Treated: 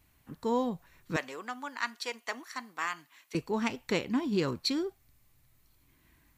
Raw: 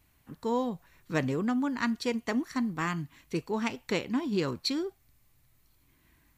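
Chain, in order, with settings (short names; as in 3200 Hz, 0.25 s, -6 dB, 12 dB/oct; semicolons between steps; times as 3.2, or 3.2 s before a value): 1.16–3.35 HPF 770 Hz 12 dB/oct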